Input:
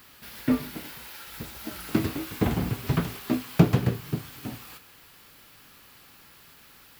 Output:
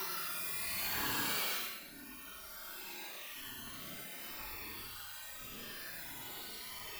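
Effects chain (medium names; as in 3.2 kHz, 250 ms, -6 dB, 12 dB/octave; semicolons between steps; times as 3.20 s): harmonic-percussive separation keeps percussive; Paulstretch 11×, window 0.05 s, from 4.63 s; trim +11 dB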